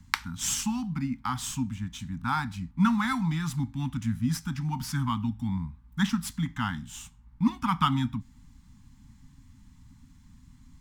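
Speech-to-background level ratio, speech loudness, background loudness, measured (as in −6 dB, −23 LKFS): 3.0 dB, −30.0 LKFS, −33.0 LKFS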